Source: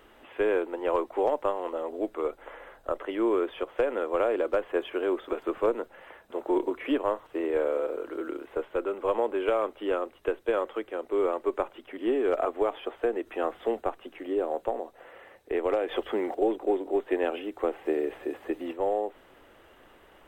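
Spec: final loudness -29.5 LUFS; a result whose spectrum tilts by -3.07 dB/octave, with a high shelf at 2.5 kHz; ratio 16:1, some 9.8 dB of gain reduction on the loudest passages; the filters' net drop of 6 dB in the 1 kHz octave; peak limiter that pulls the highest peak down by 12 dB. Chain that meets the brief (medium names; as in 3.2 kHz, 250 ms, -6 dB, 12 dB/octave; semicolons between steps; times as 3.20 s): peaking EQ 1 kHz -7.5 dB; treble shelf 2.5 kHz -5.5 dB; compression 16:1, threshold -32 dBFS; trim +13.5 dB; peak limiter -19.5 dBFS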